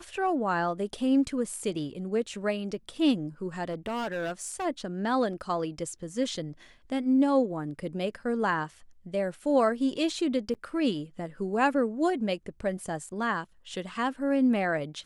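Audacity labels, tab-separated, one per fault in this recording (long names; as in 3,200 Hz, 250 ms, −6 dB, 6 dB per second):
3.680000	4.660000	clipping −28.5 dBFS
10.540000	10.550000	drop-out 7.3 ms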